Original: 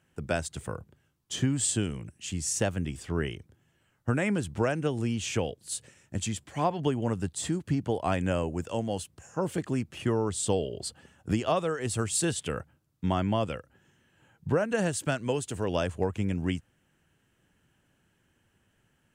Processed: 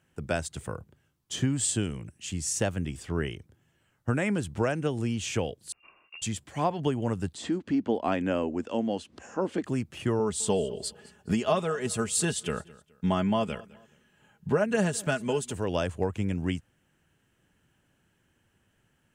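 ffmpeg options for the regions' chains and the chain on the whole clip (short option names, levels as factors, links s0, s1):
-filter_complex "[0:a]asettb=1/sr,asplit=3[s0][s1][s2];[s0]atrim=end=5.724[s3];[s1]atrim=start=5.72:end=6.22,asetpts=PTS-STARTPTS,afade=t=in:d=0.004:c=qsin,afade=t=out:st=0.496:d=0.004:c=qsin,volume=16.8,asoftclip=hard,volume=0.0596,acompressor=threshold=0.00794:ratio=6:attack=3.2:release=140:knee=1:detection=peak,lowpass=f=2500:t=q:w=0.5098,lowpass=f=2500:t=q:w=0.6013,lowpass=f=2500:t=q:w=0.9,lowpass=f=2500:t=q:w=2.563,afreqshift=-2900[s4];[s2]atrim=start=6.216[s5];[s3][s4]acrossfade=d=0.004:c1=hsin:c2=qsin[s6];[s6][s5]acrossfade=d=0.004:c1=qsin:c2=hsin,asettb=1/sr,asplit=3[s7][s8][s9];[s7]atrim=end=7.354[s10];[s8]atrim=start=7.35:end=9.64,asetpts=PTS-STARTPTS,afade=t=in:d=0.004:c=qsin,afade=t=out:st=2.286:d=0.004:c=qsin,lowpass=4600,lowshelf=f=180:t=q:w=3:g=-8,acompressor=mode=upward:threshold=0.0141:ratio=2.5:attack=3.2:release=140:knee=2.83:detection=peak[s11];[s9]atrim=start=9.636[s12];[s10][s11]acrossfade=d=0.004:c1=hsin:c2=qsin[s13];[s13][s12]acrossfade=d=0.004:c1=qsin:c2=hsin,asettb=1/sr,asplit=3[s14][s15][s16];[s14]atrim=end=10.194[s17];[s15]atrim=start=10.19:end=15.53,asetpts=PTS-STARTPTS,afade=t=in:d=0.004:c=qsin,afade=t=out:st=5.336:d=0.004:c=qsin,aecho=1:1:4.8:0.55,atrim=end_sample=235494,aecho=1:1:210|420:0.0841|0.0278,atrim=end_sample=235494[s18];[s16]atrim=start=15.526[s19];[s17][s18]acrossfade=d=0.004:c1=hsin:c2=qsin[s20];[s20][s19]acrossfade=d=0.004:c1=qsin:c2=hsin"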